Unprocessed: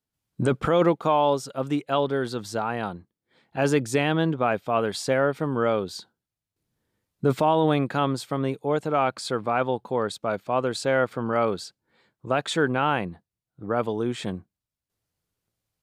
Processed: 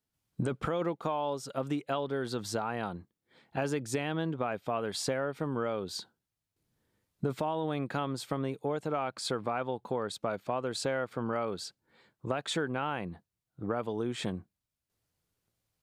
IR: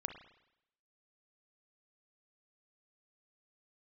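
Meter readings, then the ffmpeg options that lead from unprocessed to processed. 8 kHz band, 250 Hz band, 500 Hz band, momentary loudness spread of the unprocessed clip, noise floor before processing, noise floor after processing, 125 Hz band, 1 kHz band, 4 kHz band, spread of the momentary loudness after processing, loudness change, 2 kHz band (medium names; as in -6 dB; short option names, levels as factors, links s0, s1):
-4.0 dB, -8.5 dB, -9.5 dB, 9 LU, under -85 dBFS, under -85 dBFS, -8.0 dB, -10.0 dB, -5.5 dB, 7 LU, -9.0 dB, -9.5 dB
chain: -af "acompressor=threshold=0.0355:ratio=6"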